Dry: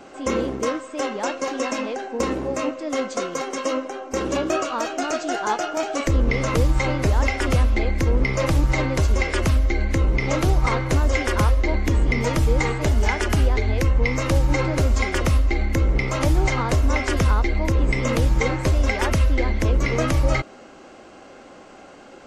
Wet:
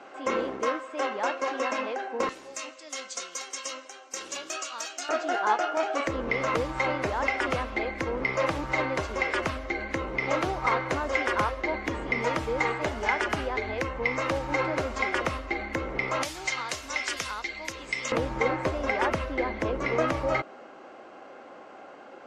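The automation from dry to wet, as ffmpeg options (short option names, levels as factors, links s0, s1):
-af "asetnsamples=n=441:p=0,asendcmd='2.29 bandpass f 6800;5.09 bandpass f 1200;16.23 bandpass f 4500;18.12 bandpass f 900',bandpass=f=1300:t=q:w=0.6:csg=0"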